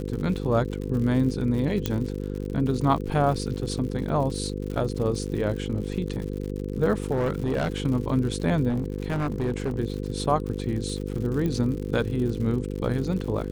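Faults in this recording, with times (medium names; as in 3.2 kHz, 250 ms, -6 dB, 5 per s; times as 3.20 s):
buzz 50 Hz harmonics 10 -31 dBFS
crackle 97 per s -33 dBFS
1.86 s: pop -10 dBFS
7.11–7.82 s: clipped -20.5 dBFS
8.68–9.80 s: clipped -22 dBFS
11.46 s: pop -17 dBFS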